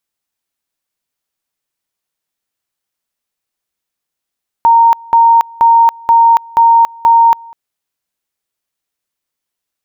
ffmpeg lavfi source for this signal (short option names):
-f lavfi -i "aevalsrc='pow(10,(-3.5-26.5*gte(mod(t,0.48),0.28))/20)*sin(2*PI*924*t)':d=2.88:s=44100"